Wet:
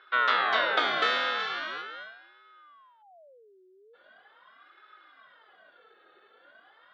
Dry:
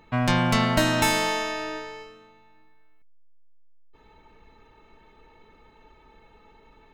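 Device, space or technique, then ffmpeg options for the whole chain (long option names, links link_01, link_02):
voice changer toy: -filter_complex "[0:a]aeval=exprs='val(0)*sin(2*PI*820*n/s+820*0.55/0.41*sin(2*PI*0.41*n/s))':channel_layout=same,highpass=540,equalizer=frequency=910:width_type=q:width=4:gain=-9,equalizer=frequency=1500:width_type=q:width=4:gain=8,equalizer=frequency=2500:width_type=q:width=4:gain=-6,equalizer=frequency=3600:width_type=q:width=4:gain=8,lowpass=frequency=3700:width=0.5412,lowpass=frequency=3700:width=1.3066,asettb=1/sr,asplit=3[link_01][link_02][link_03];[link_01]atrim=end=1.394[link_04];[link_02]atrim=start=1.39:end=1.82,asetpts=PTS-STARTPTS,afade=type=in:duration=0.004:curve=qsin,afade=type=out:start_time=0.426:duration=0.004:curve=qsin,equalizer=frequency=9400:width=0.48:gain=6[link_05];[link_03]atrim=start=1.816[link_06];[link_04][link_05]acrossfade=duration=0.004:curve1=hsin:curve2=qsin[link_07];[link_07][link_06]acrossfade=duration=0.004:curve1=qsin:curve2=hsin"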